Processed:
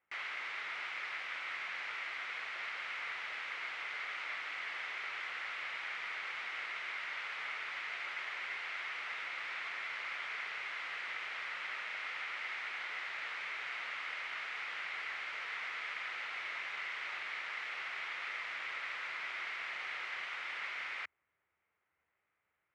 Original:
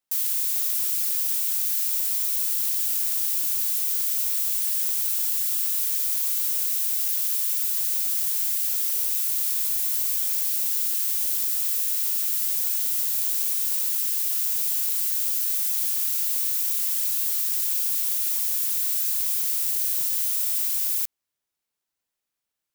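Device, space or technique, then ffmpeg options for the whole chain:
bass cabinet: -af "highpass=68,equalizer=f=78:t=q:w=4:g=5,equalizer=f=150:t=q:w=4:g=-3,equalizer=f=250:t=q:w=4:g=-10,equalizer=f=1.3k:t=q:w=4:g=5,equalizer=f=2.1k:t=q:w=4:g=8,lowpass=f=2.3k:w=0.5412,lowpass=f=2.3k:w=1.3066,volume=7dB"

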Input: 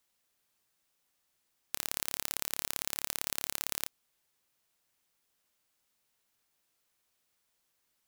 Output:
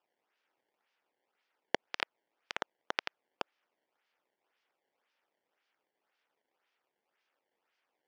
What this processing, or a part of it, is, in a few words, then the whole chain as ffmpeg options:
circuit-bent sampling toy: -af "acrusher=samples=20:mix=1:aa=0.000001:lfo=1:lforange=32:lforate=1.9,highpass=550,equalizer=f=660:t=q:w=4:g=-4,equalizer=f=1.1k:t=q:w=4:g=-5,equalizer=f=4k:t=q:w=4:g=-7,lowpass=f=4.9k:w=0.5412,lowpass=f=4.9k:w=1.3066,volume=-1dB"

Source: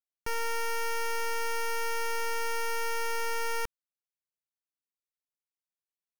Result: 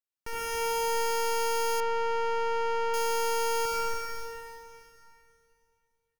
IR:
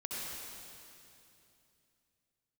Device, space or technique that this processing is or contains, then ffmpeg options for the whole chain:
cave: -filter_complex "[0:a]aecho=1:1:284:0.335[a];[1:a]atrim=start_sample=2205[b];[a][b]afir=irnorm=-1:irlink=0,asettb=1/sr,asplit=3[c][d][e];[c]atrim=end=1.804[f];[d]atrim=start=1.8:end=2.94,asetpts=PTS-STARTPTS,afade=t=in:d=0.004:c=qsin,afade=t=out:st=1.136:d=0.004:c=qsin,lowpass=2.8k[g];[e]atrim=start=2.936[h];[f][g]acrossfade=d=0.004:c1=hsin:c2=qsin[i];[i][h]acrossfade=d=0.004:c1=qsin:c2=hsin"

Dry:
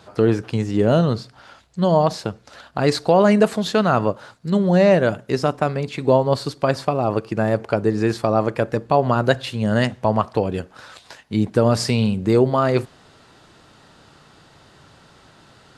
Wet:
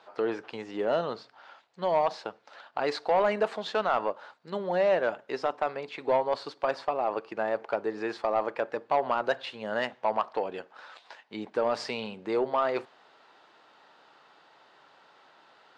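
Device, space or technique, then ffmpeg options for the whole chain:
intercom: -af "highpass=490,lowpass=3.6k,equalizer=f=870:t=o:w=0.39:g=4,asoftclip=type=tanh:threshold=-9.5dB,volume=-6dB"

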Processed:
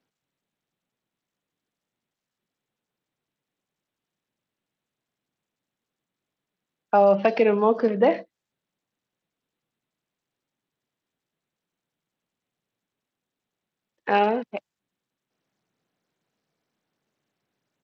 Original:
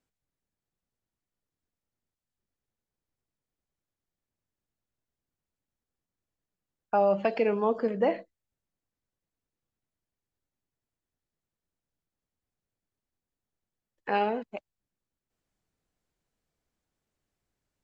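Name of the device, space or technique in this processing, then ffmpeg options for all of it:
Bluetooth headset: -af "highpass=f=130:w=0.5412,highpass=f=130:w=1.3066,aresample=16000,aresample=44100,volume=6.5dB" -ar 32000 -c:a sbc -b:a 64k

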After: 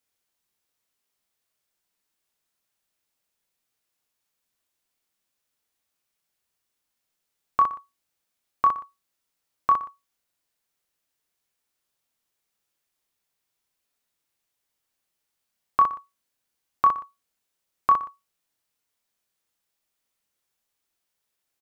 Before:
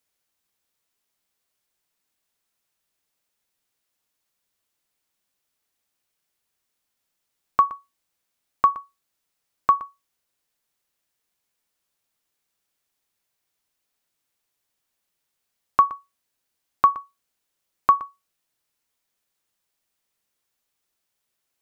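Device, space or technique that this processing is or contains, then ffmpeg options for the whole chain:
slapback doubling: -filter_complex "[0:a]asplit=3[a][b][c];[b]adelay=25,volume=-6.5dB[d];[c]adelay=63,volume=-5.5dB[e];[a][d][e]amix=inputs=3:normalize=0,volume=-3.5dB"

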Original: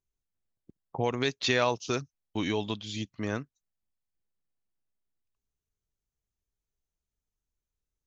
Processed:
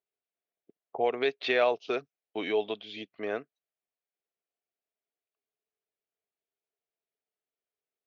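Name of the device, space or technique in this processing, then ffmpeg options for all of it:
phone earpiece: -af "highpass=360,equalizer=f=430:t=q:w=4:g=8,equalizer=f=680:t=q:w=4:g=9,equalizer=f=980:t=q:w=4:g=-5,equalizer=f=2.3k:t=q:w=4:g=3,lowpass=f=3.6k:w=0.5412,lowpass=f=3.6k:w=1.3066,volume=-1.5dB"

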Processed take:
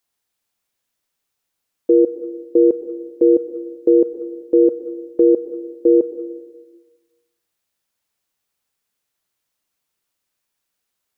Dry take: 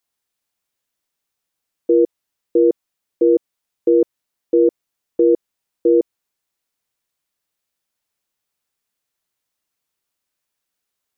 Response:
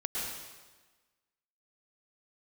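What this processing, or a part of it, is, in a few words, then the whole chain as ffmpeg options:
compressed reverb return: -filter_complex "[0:a]asplit=2[a][b];[1:a]atrim=start_sample=2205[c];[b][c]afir=irnorm=-1:irlink=0,acompressor=threshold=-13dB:ratio=6,volume=-11.5dB[d];[a][d]amix=inputs=2:normalize=0"

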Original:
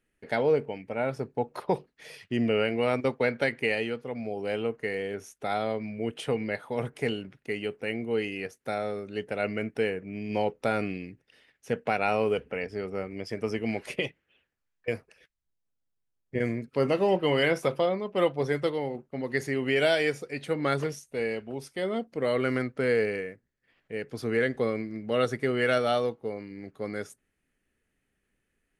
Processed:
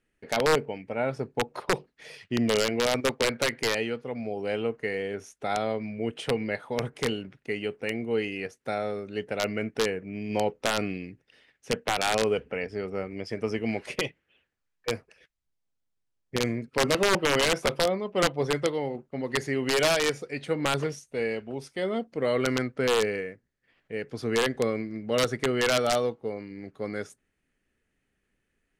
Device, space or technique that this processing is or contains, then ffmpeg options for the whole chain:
overflowing digital effects unit: -af "aeval=exprs='(mod(6.31*val(0)+1,2)-1)/6.31':c=same,lowpass=8.9k,volume=1dB"

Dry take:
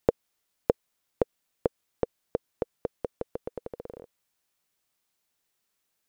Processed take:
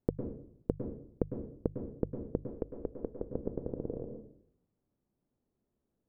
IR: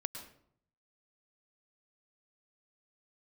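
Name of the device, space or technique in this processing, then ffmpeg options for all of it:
television next door: -filter_complex "[0:a]acompressor=threshold=-38dB:ratio=4,lowpass=320[a];[1:a]atrim=start_sample=2205[b];[a][b]afir=irnorm=-1:irlink=0,asettb=1/sr,asplit=3[c][d][e];[c]atrim=end=2.504[f];[d]atrim=start=2.5:end=3.3,asetpts=PTS-STARTPTS,afade=t=in:d=0.004:c=qsin,afade=t=out:st=0.796:d=0.004:c=qsin,equalizer=f=140:t=o:w=1.5:g=-11[g];[e]atrim=start=3.296[h];[f][g]acrossfade=d=0.004:c1=hsin:c2=qsin[i];[i][h]acrossfade=d=0.004:c1=qsin:c2=hsin,bandreject=f=50:t=h:w=6,bandreject=f=100:t=h:w=6,bandreject=f=150:t=h:w=6,volume=13.5dB"

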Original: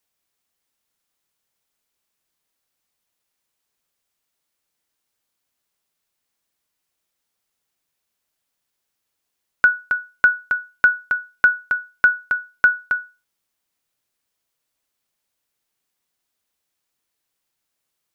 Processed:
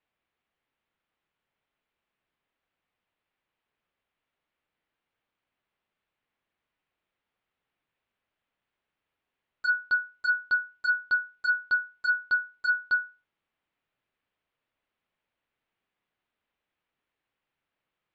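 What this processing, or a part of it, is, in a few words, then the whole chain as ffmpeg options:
synthesiser wavefolder: -af "aeval=exprs='0.133*(abs(mod(val(0)/0.133+3,4)-2)-1)':c=same,lowpass=f=3k:w=0.5412,lowpass=f=3k:w=1.3066"

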